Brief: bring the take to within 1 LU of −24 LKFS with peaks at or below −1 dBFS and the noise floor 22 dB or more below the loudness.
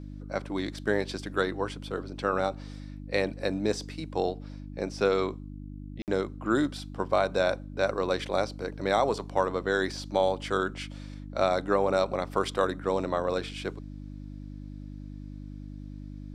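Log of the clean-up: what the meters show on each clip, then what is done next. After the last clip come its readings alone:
number of dropouts 1; longest dropout 58 ms; mains hum 50 Hz; hum harmonics up to 300 Hz; level of the hum −38 dBFS; integrated loudness −29.5 LKFS; sample peak −11.0 dBFS; target loudness −24.0 LKFS
→ repair the gap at 0:06.02, 58 ms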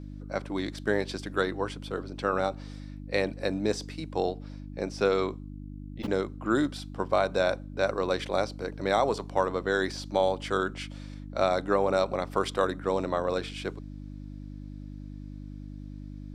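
number of dropouts 0; mains hum 50 Hz; hum harmonics up to 300 Hz; level of the hum −38 dBFS
→ hum removal 50 Hz, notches 6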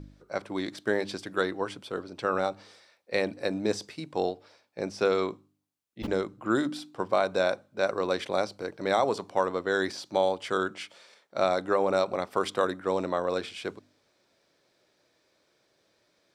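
mains hum none found; integrated loudness −29.5 LKFS; sample peak −11.5 dBFS; target loudness −24.0 LKFS
→ level +5.5 dB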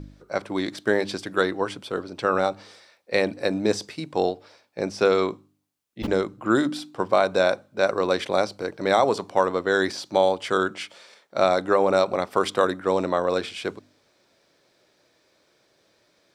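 integrated loudness −24.0 LKFS; sample peak −6.0 dBFS; background noise floor −65 dBFS

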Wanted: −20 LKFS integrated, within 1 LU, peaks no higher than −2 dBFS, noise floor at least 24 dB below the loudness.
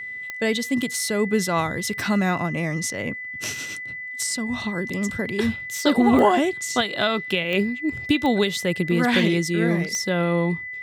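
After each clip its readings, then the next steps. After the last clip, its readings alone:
number of clicks 5; interfering tone 2,000 Hz; level of the tone −31 dBFS; integrated loudness −23.0 LKFS; sample peak −4.5 dBFS; target loudness −20.0 LKFS
→ click removal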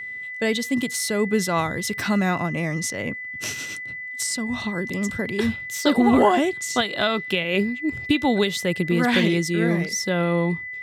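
number of clicks 0; interfering tone 2,000 Hz; level of the tone −31 dBFS
→ notch filter 2,000 Hz, Q 30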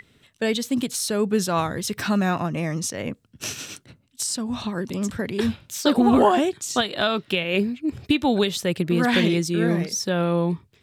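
interfering tone none found; integrated loudness −23.0 LKFS; sample peak −5.5 dBFS; target loudness −20.0 LKFS
→ level +3 dB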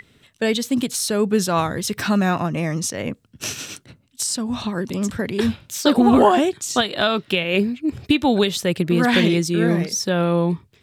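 integrated loudness −20.0 LKFS; sample peak −2.5 dBFS; background noise floor −58 dBFS

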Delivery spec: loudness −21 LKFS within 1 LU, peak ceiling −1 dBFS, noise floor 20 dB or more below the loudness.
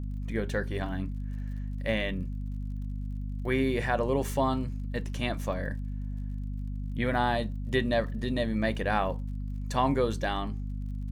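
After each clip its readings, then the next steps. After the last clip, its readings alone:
crackle rate 44 per second; mains hum 50 Hz; hum harmonics up to 250 Hz; level of the hum −32 dBFS; integrated loudness −31.0 LKFS; sample peak −12.5 dBFS; target loudness −21.0 LKFS
→ click removal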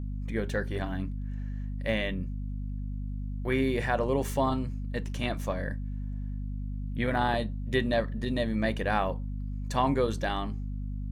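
crackle rate 0.63 per second; mains hum 50 Hz; hum harmonics up to 250 Hz; level of the hum −32 dBFS
→ hum removal 50 Hz, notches 5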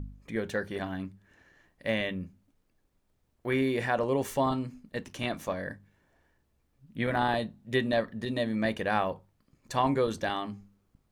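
mains hum none found; integrated loudness −31.0 LKFS; sample peak −12.5 dBFS; target loudness −21.0 LKFS
→ level +10 dB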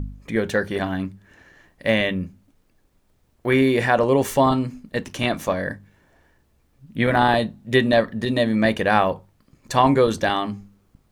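integrated loudness −21.0 LKFS; sample peak −2.5 dBFS; background noise floor −63 dBFS

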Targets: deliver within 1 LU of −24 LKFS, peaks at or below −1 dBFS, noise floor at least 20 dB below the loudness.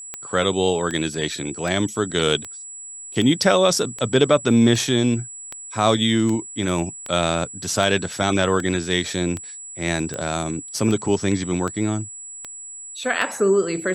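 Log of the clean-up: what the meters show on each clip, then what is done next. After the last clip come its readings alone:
number of clicks 18; interfering tone 7,800 Hz; level of the tone −34 dBFS; integrated loudness −21.0 LKFS; sample peak −2.0 dBFS; target loudness −24.0 LKFS
→ click removal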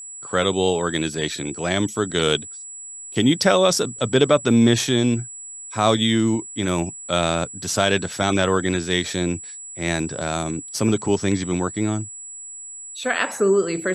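number of clicks 0; interfering tone 7,800 Hz; level of the tone −34 dBFS
→ notch filter 7,800 Hz, Q 30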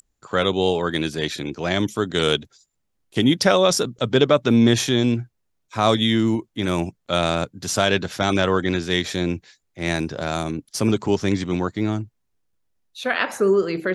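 interfering tone none found; integrated loudness −21.5 LKFS; sample peak −2.5 dBFS; target loudness −24.0 LKFS
→ level −2.5 dB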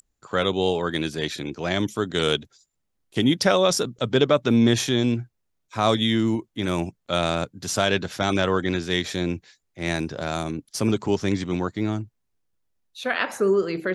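integrated loudness −24.0 LKFS; sample peak −5.0 dBFS; background noise floor −75 dBFS

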